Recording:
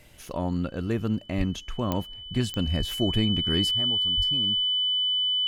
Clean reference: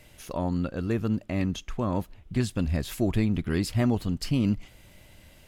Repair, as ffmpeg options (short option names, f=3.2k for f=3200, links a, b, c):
-filter_complex "[0:a]adeclick=t=4,bandreject=f=3k:w=30,asplit=3[a][b][c];[a]afade=t=out:st=1.37:d=0.02[d];[b]highpass=f=140:w=0.5412,highpass=f=140:w=1.3066,afade=t=in:st=1.37:d=0.02,afade=t=out:st=1.49:d=0.02[e];[c]afade=t=in:st=1.49:d=0.02[f];[d][e][f]amix=inputs=3:normalize=0,asplit=3[g][h][i];[g]afade=t=out:st=2.78:d=0.02[j];[h]highpass=f=140:w=0.5412,highpass=f=140:w=1.3066,afade=t=in:st=2.78:d=0.02,afade=t=out:st=2.9:d=0.02[k];[i]afade=t=in:st=2.9:d=0.02[l];[j][k][l]amix=inputs=3:normalize=0,asplit=3[m][n][o];[m]afade=t=out:st=4.16:d=0.02[p];[n]highpass=f=140:w=0.5412,highpass=f=140:w=1.3066,afade=t=in:st=4.16:d=0.02,afade=t=out:st=4.28:d=0.02[q];[o]afade=t=in:st=4.28:d=0.02[r];[p][q][r]amix=inputs=3:normalize=0,asetnsamples=n=441:p=0,asendcmd='3.71 volume volume 11.5dB',volume=0dB"